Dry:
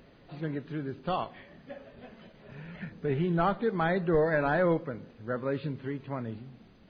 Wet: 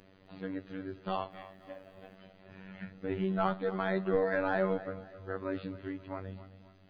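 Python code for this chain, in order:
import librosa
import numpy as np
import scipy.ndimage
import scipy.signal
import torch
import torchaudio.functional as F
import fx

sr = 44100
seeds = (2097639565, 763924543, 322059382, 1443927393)

y = fx.cheby_harmonics(x, sr, harmonics=(4,), levels_db=(-34,), full_scale_db=-15.5)
y = fx.dmg_noise_colour(y, sr, seeds[0], colour='white', level_db=-80.0, at=(1.3, 2.14), fade=0.02)
y = fx.robotise(y, sr, hz=95.2)
y = fx.echo_feedback(y, sr, ms=264, feedback_pct=39, wet_db=-15.5)
y = y * librosa.db_to_amplitude(-1.5)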